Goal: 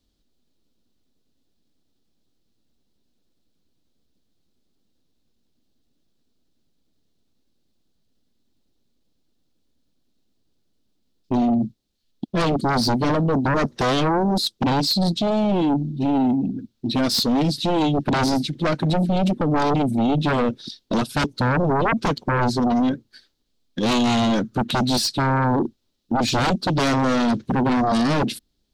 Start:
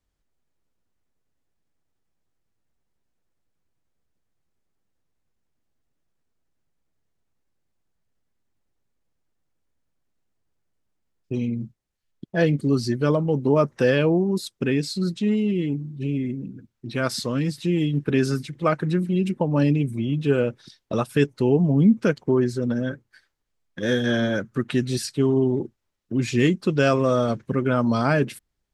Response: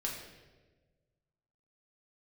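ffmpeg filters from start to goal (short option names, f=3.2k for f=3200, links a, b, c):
-af "aeval=exprs='(tanh(3.98*val(0)+0.6)-tanh(0.6))/3.98':c=same,equalizer=f=125:t=o:w=1:g=-3,equalizer=f=250:t=o:w=1:g=9,equalizer=f=1k:t=o:w=1:g=-5,equalizer=f=2k:t=o:w=1:g=-8,equalizer=f=4k:t=o:w=1:g=11,equalizer=f=8k:t=o:w=1:g=-3,aeval=exprs='0.158*sin(PI/2*1.78*val(0)/0.158)':c=same"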